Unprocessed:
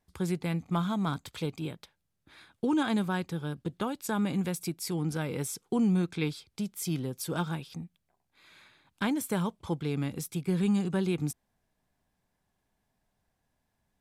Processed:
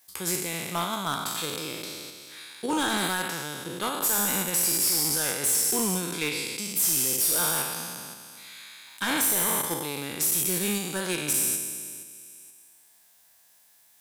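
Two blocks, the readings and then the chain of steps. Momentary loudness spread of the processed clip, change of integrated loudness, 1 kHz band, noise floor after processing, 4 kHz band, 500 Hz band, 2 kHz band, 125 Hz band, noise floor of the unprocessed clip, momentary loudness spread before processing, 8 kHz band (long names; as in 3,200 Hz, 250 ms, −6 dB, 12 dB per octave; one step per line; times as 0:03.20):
19 LU, +6.5 dB, +6.0 dB, −59 dBFS, +12.5 dB, +1.5 dB, +9.0 dB, −6.5 dB, −80 dBFS, 10 LU, +18.5 dB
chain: peak hold with a decay on every bin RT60 1.88 s
RIAA equalisation recording
in parallel at −2 dB: output level in coarse steps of 15 dB
on the sum: gain into a clipping stage and back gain 19 dB
one half of a high-frequency compander encoder only
level −1.5 dB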